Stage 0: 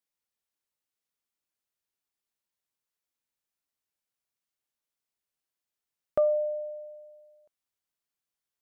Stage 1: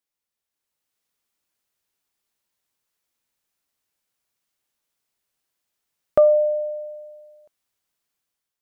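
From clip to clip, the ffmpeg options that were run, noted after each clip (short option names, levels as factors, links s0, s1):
-af "dynaudnorm=f=480:g=3:m=2.51,volume=1.19"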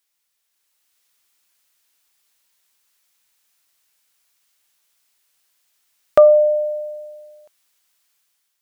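-af "tiltshelf=f=780:g=-7,volume=2.11"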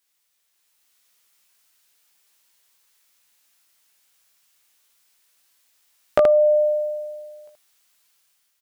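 -filter_complex "[0:a]acompressor=threshold=0.158:ratio=6,asplit=2[s0][s1];[s1]aecho=0:1:17|77:0.631|0.631[s2];[s0][s2]amix=inputs=2:normalize=0"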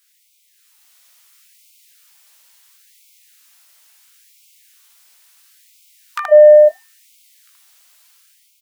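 -af "asoftclip=type=tanh:threshold=0.355,alimiter=level_in=4.47:limit=0.891:release=50:level=0:latency=1,afftfilt=real='re*gte(b*sr/1024,470*pow(2100/470,0.5+0.5*sin(2*PI*0.73*pts/sr)))':imag='im*gte(b*sr/1024,470*pow(2100/470,0.5+0.5*sin(2*PI*0.73*pts/sr)))':win_size=1024:overlap=0.75,volume=0.891"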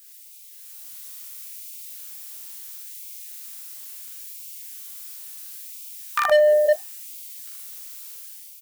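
-filter_complex "[0:a]asplit=2[s0][s1];[s1]adelay=44,volume=0.708[s2];[s0][s2]amix=inputs=2:normalize=0,crystalizer=i=2:c=0,volume=4.47,asoftclip=hard,volume=0.224"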